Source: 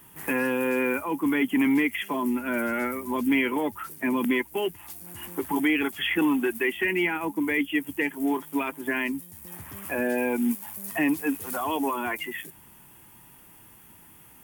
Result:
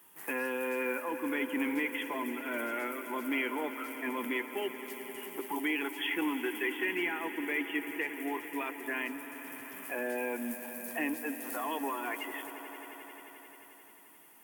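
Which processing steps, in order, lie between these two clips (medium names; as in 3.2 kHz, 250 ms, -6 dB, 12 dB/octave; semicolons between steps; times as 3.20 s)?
high-pass 330 Hz 12 dB/octave; on a send: echo with a slow build-up 88 ms, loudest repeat 5, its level -16.5 dB; on the sum: trim -7 dB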